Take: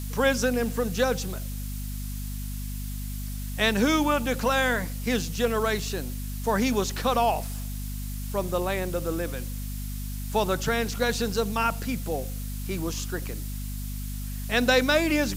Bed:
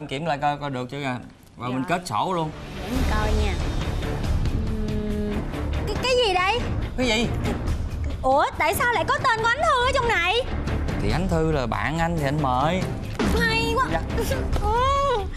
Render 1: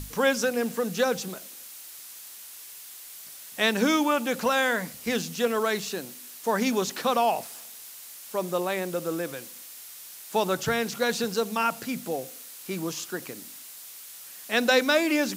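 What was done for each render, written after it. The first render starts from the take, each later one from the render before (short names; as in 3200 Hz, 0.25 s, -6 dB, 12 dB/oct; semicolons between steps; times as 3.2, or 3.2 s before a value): notches 50/100/150/200/250 Hz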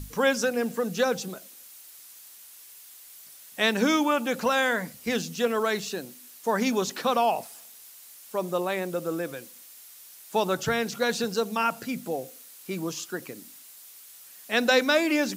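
denoiser 6 dB, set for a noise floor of -44 dBFS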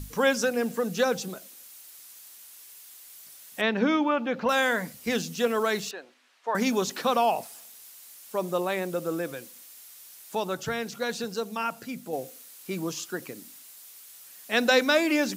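3.61–4.49 air absorption 260 m; 5.91–6.55 BPF 640–2500 Hz; 10.35–12.13 gain -4.5 dB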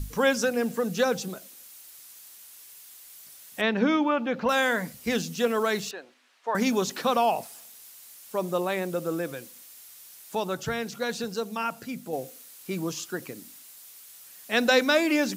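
low shelf 96 Hz +8 dB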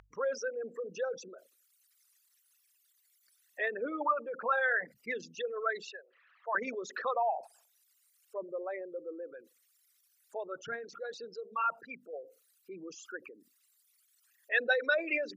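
formant sharpening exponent 3; band-pass 1500 Hz, Q 1.3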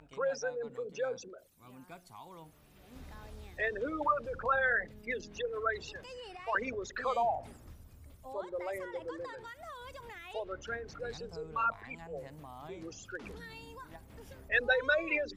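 add bed -27 dB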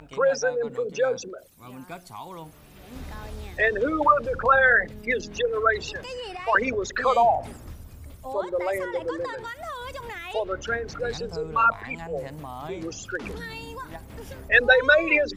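gain +11.5 dB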